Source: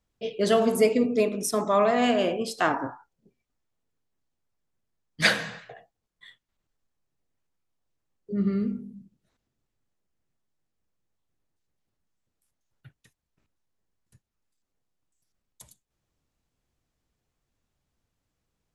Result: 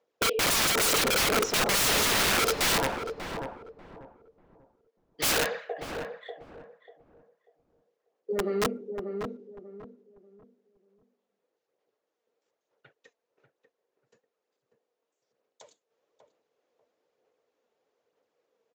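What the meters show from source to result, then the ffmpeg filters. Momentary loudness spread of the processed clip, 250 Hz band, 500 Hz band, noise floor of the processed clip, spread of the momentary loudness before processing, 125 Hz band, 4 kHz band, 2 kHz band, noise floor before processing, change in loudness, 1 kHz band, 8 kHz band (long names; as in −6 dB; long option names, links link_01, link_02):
15 LU, −8.0 dB, −5.0 dB, −85 dBFS, 12 LU, −2.5 dB, +6.5 dB, +2.0 dB, −83 dBFS, −1.0 dB, −1.0 dB, +10.0 dB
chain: -filter_complex "[0:a]lowpass=frequency=3200:poles=1,aresample=16000,asoftclip=type=tanh:threshold=-17.5dB,aresample=44100,aphaser=in_gain=1:out_gain=1:delay=4.5:decay=0.38:speed=1.1:type=sinusoidal,highpass=frequency=470:width_type=q:width=4.4,aeval=exprs='(mod(13.3*val(0)+1,2)-1)/13.3':channel_layout=same,asplit=2[link_01][link_02];[link_02]adelay=591,lowpass=frequency=930:poles=1,volume=-5dB,asplit=2[link_03][link_04];[link_04]adelay=591,lowpass=frequency=930:poles=1,volume=0.3,asplit=2[link_05][link_06];[link_06]adelay=591,lowpass=frequency=930:poles=1,volume=0.3,asplit=2[link_07][link_08];[link_08]adelay=591,lowpass=frequency=930:poles=1,volume=0.3[link_09];[link_03][link_05][link_07][link_09]amix=inputs=4:normalize=0[link_10];[link_01][link_10]amix=inputs=2:normalize=0,volume=2.5dB"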